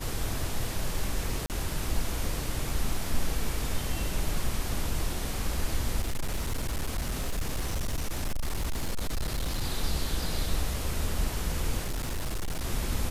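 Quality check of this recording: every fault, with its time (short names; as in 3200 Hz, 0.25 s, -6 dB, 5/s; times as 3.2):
1.46–1.5 gap 38 ms
6.01–9.62 clipped -25.5 dBFS
11.83–12.65 clipped -27.5 dBFS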